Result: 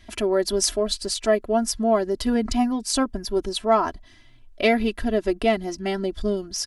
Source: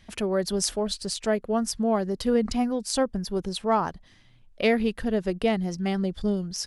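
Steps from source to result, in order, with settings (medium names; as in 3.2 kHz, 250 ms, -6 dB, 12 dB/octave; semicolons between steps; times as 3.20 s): comb 3 ms, depth 82%; trim +2 dB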